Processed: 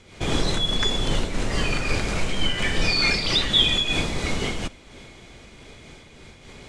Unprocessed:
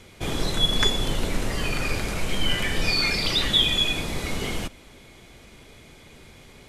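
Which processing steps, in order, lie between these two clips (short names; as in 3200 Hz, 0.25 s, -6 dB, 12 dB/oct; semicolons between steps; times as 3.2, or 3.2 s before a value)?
LPF 8700 Hz 24 dB/oct; in parallel at -0.5 dB: limiter -16 dBFS, peak gain reduction 10 dB; on the sum: noise-modulated level, depth 65%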